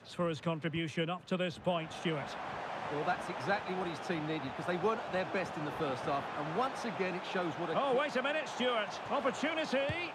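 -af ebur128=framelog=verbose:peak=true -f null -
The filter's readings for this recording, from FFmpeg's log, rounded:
Integrated loudness:
  I:         -35.4 LUFS
  Threshold: -45.4 LUFS
Loudness range:
  LRA:         2.4 LU
  Threshold: -55.6 LUFS
  LRA low:   -36.6 LUFS
  LRA high:  -34.2 LUFS
True peak:
  Peak:      -21.1 dBFS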